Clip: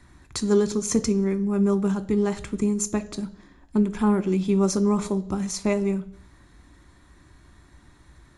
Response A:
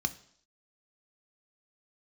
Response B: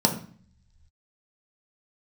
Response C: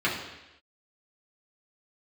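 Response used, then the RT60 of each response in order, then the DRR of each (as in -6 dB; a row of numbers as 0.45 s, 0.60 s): A; 0.60 s, 0.45 s, 0.95 s; 9.5 dB, 2.0 dB, -7.0 dB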